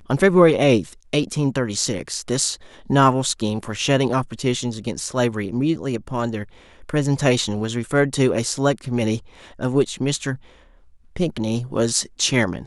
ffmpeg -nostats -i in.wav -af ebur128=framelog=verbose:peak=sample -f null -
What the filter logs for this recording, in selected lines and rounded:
Integrated loudness:
  I:         -21.0 LUFS
  Threshold: -31.4 LUFS
Loudness range:
  LRA:         3.4 LU
  Threshold: -42.0 LUFS
  LRA low:   -24.0 LUFS
  LRA high:  -20.6 LUFS
Sample peak:
  Peak:       -1.3 dBFS